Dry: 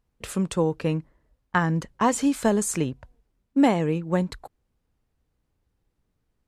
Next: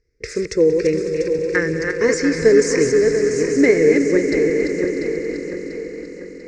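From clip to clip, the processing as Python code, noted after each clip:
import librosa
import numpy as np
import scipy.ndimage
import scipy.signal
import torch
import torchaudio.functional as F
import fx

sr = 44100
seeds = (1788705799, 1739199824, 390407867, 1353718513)

y = fx.reverse_delay_fb(x, sr, ms=346, feedback_pct=68, wet_db=-5)
y = fx.curve_eq(y, sr, hz=(110.0, 190.0, 440.0, 780.0, 1100.0, 2100.0, 3100.0, 5300.0, 12000.0), db=(0, -13, 12, -23, -16, 11, -19, 11, -29))
y = fx.echo_swell(y, sr, ms=92, loudest=5, wet_db=-15.5)
y = F.gain(torch.from_numpy(y), 4.5).numpy()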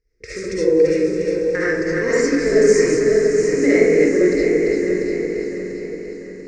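y = fx.rev_freeverb(x, sr, rt60_s=0.77, hf_ratio=0.45, predelay_ms=30, drr_db=-8.0)
y = F.gain(torch.from_numpy(y), -8.0).numpy()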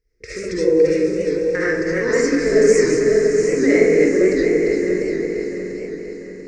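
y = fx.record_warp(x, sr, rpm=78.0, depth_cents=100.0)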